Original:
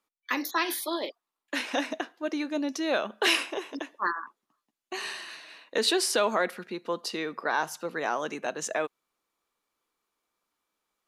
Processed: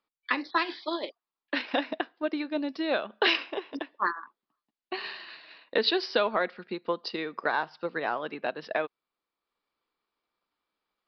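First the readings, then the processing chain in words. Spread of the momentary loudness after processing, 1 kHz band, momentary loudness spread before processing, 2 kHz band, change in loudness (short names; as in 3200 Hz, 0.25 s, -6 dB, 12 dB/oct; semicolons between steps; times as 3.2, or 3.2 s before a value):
12 LU, 0.0 dB, 12 LU, 0.0 dB, -0.5 dB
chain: transient shaper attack +5 dB, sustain -4 dB; downsampling 11025 Hz; gain -2 dB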